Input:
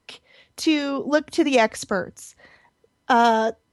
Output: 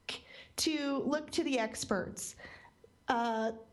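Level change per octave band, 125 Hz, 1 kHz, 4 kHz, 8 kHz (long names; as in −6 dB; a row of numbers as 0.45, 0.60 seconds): −7.0, −15.0, −8.5, −4.5 decibels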